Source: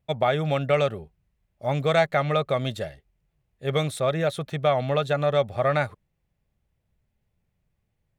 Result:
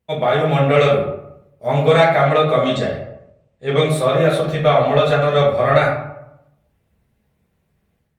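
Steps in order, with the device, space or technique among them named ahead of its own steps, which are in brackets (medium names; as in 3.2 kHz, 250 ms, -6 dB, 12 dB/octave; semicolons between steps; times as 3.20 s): 2.65–3.89 s: steep low-pass 8.8 kHz 96 dB/octave; far-field microphone of a smart speaker (reverberation RT60 0.80 s, pre-delay 3 ms, DRR -6 dB; high-pass 120 Hz 6 dB/octave; level rider gain up to 7 dB; Opus 32 kbps 48 kHz)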